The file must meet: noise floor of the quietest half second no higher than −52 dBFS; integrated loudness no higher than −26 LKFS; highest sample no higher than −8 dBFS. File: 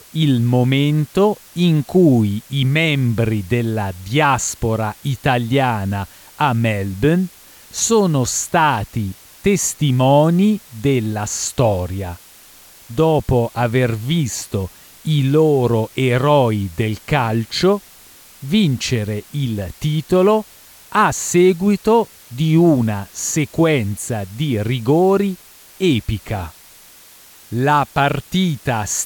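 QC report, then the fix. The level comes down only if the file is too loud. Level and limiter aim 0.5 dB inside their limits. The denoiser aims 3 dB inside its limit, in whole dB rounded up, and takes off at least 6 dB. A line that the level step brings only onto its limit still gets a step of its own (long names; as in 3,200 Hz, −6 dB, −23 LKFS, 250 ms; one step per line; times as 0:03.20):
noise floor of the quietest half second −44 dBFS: out of spec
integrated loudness −17.5 LKFS: out of spec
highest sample −3.5 dBFS: out of spec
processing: level −9 dB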